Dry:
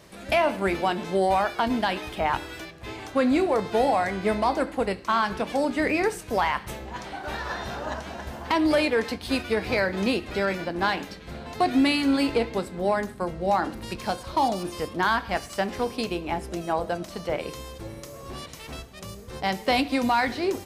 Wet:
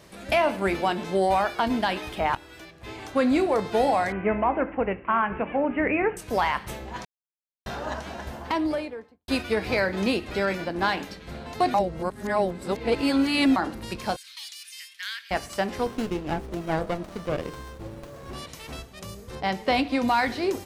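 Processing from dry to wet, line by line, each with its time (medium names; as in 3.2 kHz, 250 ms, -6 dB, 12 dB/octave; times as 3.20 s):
2.35–3.12 s: fade in, from -13 dB
4.12–6.17 s: steep low-pass 2.8 kHz 72 dB/octave
7.05–7.66 s: mute
8.22–9.28 s: studio fade out
11.74–13.56 s: reverse
14.16–15.31 s: steep high-pass 1.9 kHz
15.86–18.33 s: sliding maximum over 17 samples
19.35–20.08 s: treble shelf 7 kHz -11.5 dB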